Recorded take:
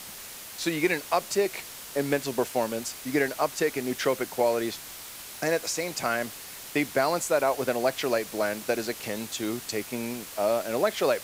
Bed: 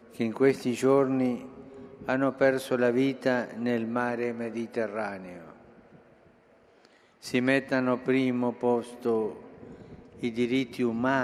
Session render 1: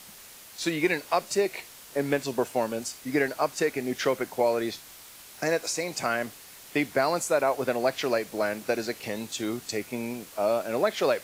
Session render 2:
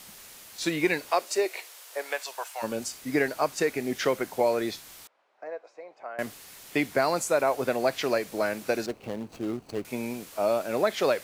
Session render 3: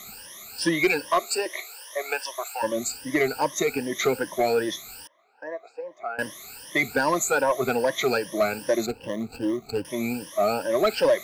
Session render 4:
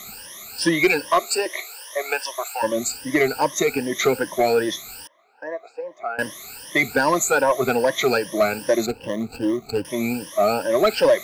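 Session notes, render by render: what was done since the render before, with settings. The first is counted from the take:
noise print and reduce 6 dB
1.1–2.62 HPF 270 Hz -> 890 Hz 24 dB/oct; 5.07–6.19 ladder band-pass 760 Hz, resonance 30%; 8.86–9.85 median filter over 25 samples
moving spectral ripple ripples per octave 1.2, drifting +2.5 Hz, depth 22 dB; soft clip -12.5 dBFS, distortion -17 dB
gain +4 dB

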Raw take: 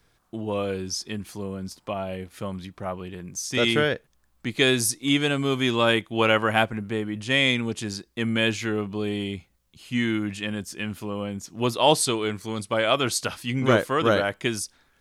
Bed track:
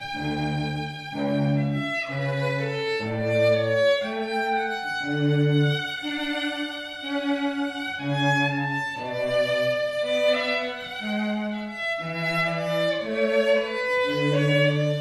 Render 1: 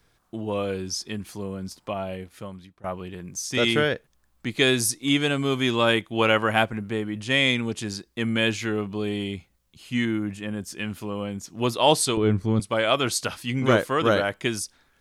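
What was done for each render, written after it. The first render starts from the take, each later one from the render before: 2.06–2.84 fade out, to -18.5 dB; 10.05–10.63 bell 3800 Hz -9.5 dB 2.2 oct; 12.17–12.6 tilt -4 dB/oct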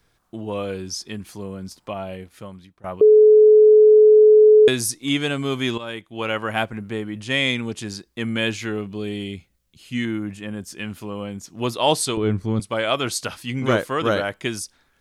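3.01–4.68 bleep 428 Hz -7.5 dBFS; 5.78–6.86 fade in, from -14.5 dB; 8.78–10.05 bell 950 Hz -6 dB 1 oct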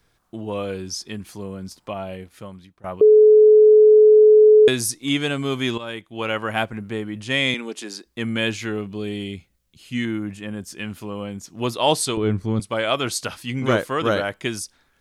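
7.54–8.05 HPF 260 Hz 24 dB/oct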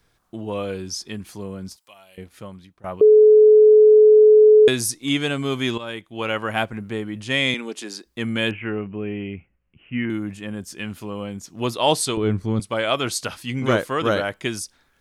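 1.76–2.18 pre-emphasis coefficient 0.97; 8.51–10.1 steep low-pass 2900 Hz 96 dB/oct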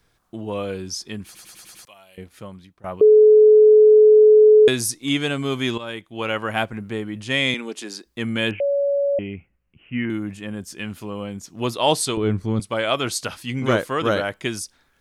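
1.25 stutter in place 0.10 s, 6 plays; 8.6–9.19 bleep 564 Hz -17 dBFS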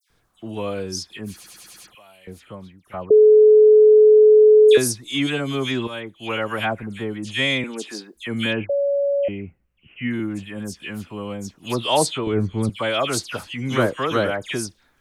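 dispersion lows, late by 98 ms, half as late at 2500 Hz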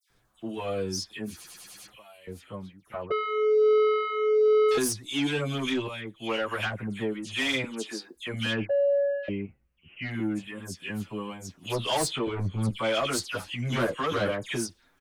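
soft clip -18.5 dBFS, distortion -7 dB; endless flanger 7.9 ms +1.2 Hz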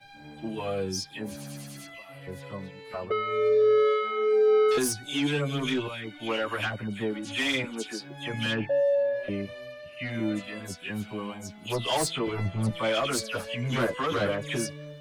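add bed track -18.5 dB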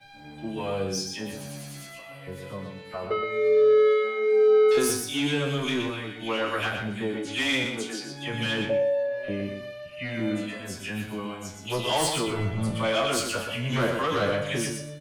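spectral trails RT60 0.33 s; on a send: feedback echo 0.121 s, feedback 21%, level -6 dB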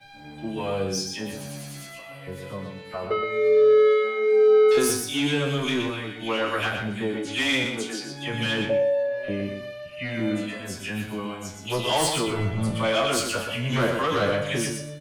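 gain +2 dB

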